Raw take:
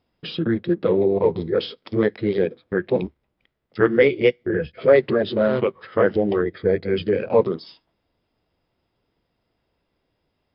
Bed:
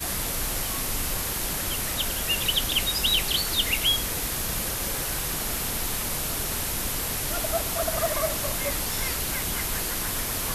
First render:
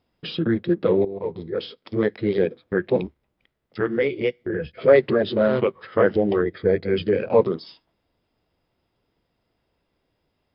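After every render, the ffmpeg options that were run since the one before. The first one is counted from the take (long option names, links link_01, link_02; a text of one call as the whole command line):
ffmpeg -i in.wav -filter_complex "[0:a]asettb=1/sr,asplit=3[link_01][link_02][link_03];[link_01]atrim=end=3.014[link_04];[link_02]atrim=start=3.01:end=4.72,asetpts=PTS-STARTPTS,afade=type=in:duration=0.004:curve=qsin,afade=type=out:start_time=1.706:duration=0.004:curve=qsin,acompressor=threshold=-28dB:ratio=1.5:attack=3.2:release=140:knee=1:detection=peak[link_05];[link_03]atrim=start=4.716[link_06];[link_04][link_05]acrossfade=duration=0.004:curve1=hsin:curve2=qsin[link_07];[link_07][link_06]acrossfade=duration=0.004:curve1=qsin:curve2=hsin,asplit=2[link_08][link_09];[link_08]atrim=end=1.05,asetpts=PTS-STARTPTS,afade=type=out:start_time=1.046:duration=0.004:curve=hsin:silence=0.211349[link_10];[link_09]atrim=start=1.05,asetpts=PTS-STARTPTS,afade=type=in:duration=1.33:silence=0.211349[link_11];[link_10][link_11]concat=n=2:v=0:a=1" out.wav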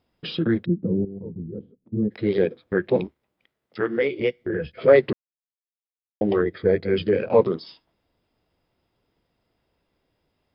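ffmpeg -i in.wav -filter_complex "[0:a]asplit=3[link_01][link_02][link_03];[link_01]afade=type=out:start_time=0.64:duration=0.02[link_04];[link_02]lowpass=frequency=210:width_type=q:width=1.7,afade=type=in:start_time=0.64:duration=0.02,afade=type=out:start_time=2.1:duration=0.02[link_05];[link_03]afade=type=in:start_time=2.1:duration=0.02[link_06];[link_04][link_05][link_06]amix=inputs=3:normalize=0,asettb=1/sr,asplit=3[link_07][link_08][link_09];[link_07]atrim=end=3.044[link_10];[link_08]atrim=start=3.04:end=4.2,asetpts=PTS-STARTPTS,afade=type=in:duration=0.004:curve=qsin,afade=type=out:start_time=1.156:duration=0.004:curve=qsin,highpass=frequency=200:poles=1[link_11];[link_09]atrim=start=4.196[link_12];[link_10][link_11]acrossfade=duration=0.004:curve1=hsin:curve2=qsin[link_13];[link_13][link_12]acrossfade=duration=0.004:curve1=qsin:curve2=hsin,asplit=3[link_14][link_15][link_16];[link_14]atrim=end=5.13,asetpts=PTS-STARTPTS,afade=type=out:start_time=5.126:duration=0.004:curve=hsin[link_17];[link_15]atrim=start=5.13:end=6.21,asetpts=PTS-STARTPTS,volume=0[link_18];[link_16]atrim=start=6.21,asetpts=PTS-STARTPTS,afade=type=in:duration=0.004:curve=hsin[link_19];[link_17][link_18][link_19]concat=n=3:v=0:a=1" out.wav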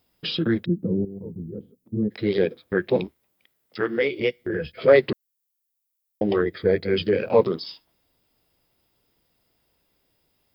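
ffmpeg -i in.wav -af "aemphasis=mode=production:type=75fm" out.wav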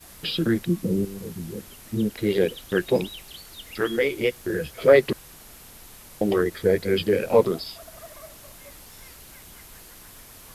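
ffmpeg -i in.wav -i bed.wav -filter_complex "[1:a]volume=-17.5dB[link_01];[0:a][link_01]amix=inputs=2:normalize=0" out.wav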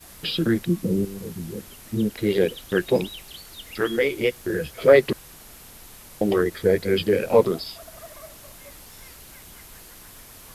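ffmpeg -i in.wav -af "volume=1dB" out.wav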